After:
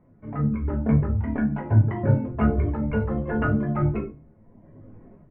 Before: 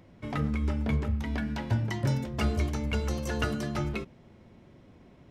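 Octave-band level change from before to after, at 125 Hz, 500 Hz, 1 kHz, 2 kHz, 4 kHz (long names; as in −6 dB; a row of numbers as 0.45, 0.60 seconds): +7.5 dB, +6.5 dB, +5.0 dB, +2.0 dB, below −15 dB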